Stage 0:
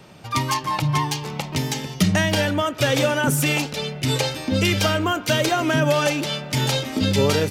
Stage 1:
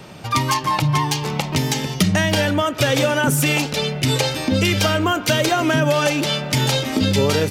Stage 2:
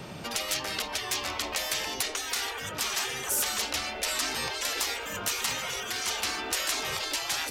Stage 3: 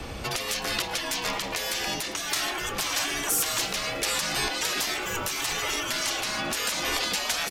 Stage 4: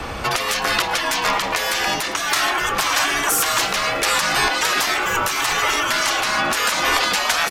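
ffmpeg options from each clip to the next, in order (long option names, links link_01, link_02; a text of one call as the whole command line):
ffmpeg -i in.wav -af "acompressor=threshold=-25dB:ratio=2,volume=7dB" out.wav
ffmpeg -i in.wav -af "afftfilt=real='re*lt(hypot(re,im),0.141)':imag='im*lt(hypot(re,im),0.141)':win_size=1024:overlap=0.75,volume=-2dB" out.wav
ffmpeg -i in.wav -filter_complex "[0:a]alimiter=limit=-19dB:level=0:latency=1:release=186,afreqshift=-100,asplit=7[link_01][link_02][link_03][link_04][link_05][link_06][link_07];[link_02]adelay=109,afreqshift=130,volume=-19dB[link_08];[link_03]adelay=218,afreqshift=260,volume=-22.7dB[link_09];[link_04]adelay=327,afreqshift=390,volume=-26.5dB[link_10];[link_05]adelay=436,afreqshift=520,volume=-30.2dB[link_11];[link_06]adelay=545,afreqshift=650,volume=-34dB[link_12];[link_07]adelay=654,afreqshift=780,volume=-37.7dB[link_13];[link_01][link_08][link_09][link_10][link_11][link_12][link_13]amix=inputs=7:normalize=0,volume=5dB" out.wav
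ffmpeg -i in.wav -af "equalizer=frequency=1200:width_type=o:width=1.8:gain=9,volume=5dB" out.wav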